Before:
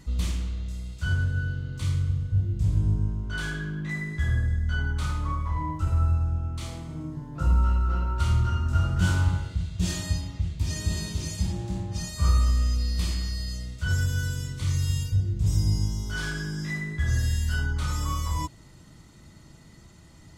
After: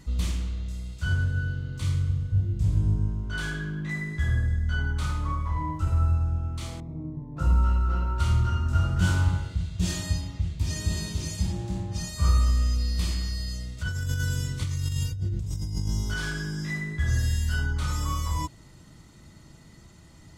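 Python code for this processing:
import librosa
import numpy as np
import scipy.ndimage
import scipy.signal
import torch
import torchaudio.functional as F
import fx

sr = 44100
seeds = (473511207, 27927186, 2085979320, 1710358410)

y = fx.moving_average(x, sr, points=29, at=(6.8, 7.37))
y = fx.over_compress(y, sr, threshold_db=-28.0, ratio=-1.0, at=(13.77, 16.14))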